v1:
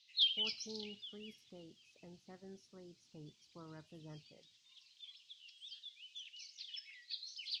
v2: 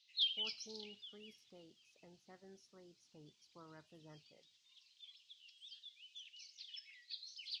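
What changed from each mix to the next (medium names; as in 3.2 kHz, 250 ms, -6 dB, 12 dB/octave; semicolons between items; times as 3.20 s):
background -3.5 dB; master: add bass shelf 390 Hz -9.5 dB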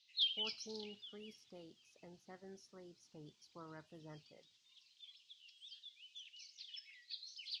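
speech +4.5 dB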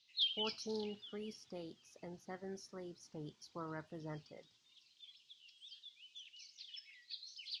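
speech +8.0 dB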